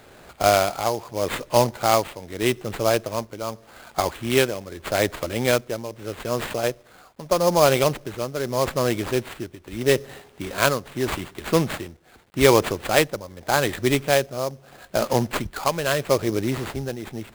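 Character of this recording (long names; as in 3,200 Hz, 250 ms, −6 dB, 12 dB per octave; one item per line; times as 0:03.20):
a quantiser's noise floor 10 bits, dither none
tremolo triangle 0.81 Hz, depth 75%
aliases and images of a low sample rate 5,700 Hz, jitter 20%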